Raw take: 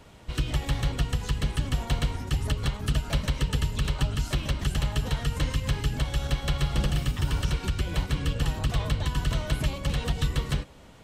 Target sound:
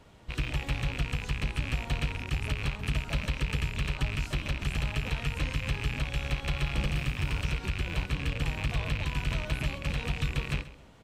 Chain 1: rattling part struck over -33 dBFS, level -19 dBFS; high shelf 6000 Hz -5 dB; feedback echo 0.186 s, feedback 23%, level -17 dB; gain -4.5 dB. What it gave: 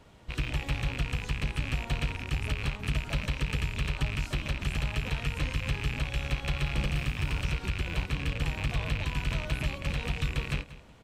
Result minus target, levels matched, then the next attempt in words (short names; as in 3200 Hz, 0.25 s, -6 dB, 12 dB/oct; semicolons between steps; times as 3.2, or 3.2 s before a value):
echo 53 ms late
rattling part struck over -33 dBFS, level -19 dBFS; high shelf 6000 Hz -5 dB; feedback echo 0.133 s, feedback 23%, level -17 dB; gain -4.5 dB